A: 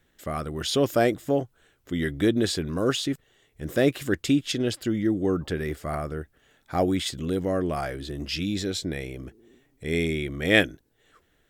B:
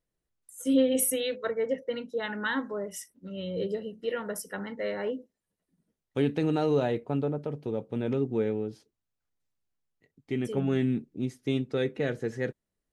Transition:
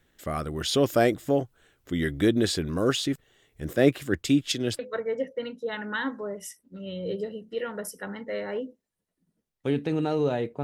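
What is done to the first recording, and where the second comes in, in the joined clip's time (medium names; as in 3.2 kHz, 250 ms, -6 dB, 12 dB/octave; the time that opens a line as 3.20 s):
A
3.73–4.79 s: three bands expanded up and down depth 70%
4.79 s: go over to B from 1.30 s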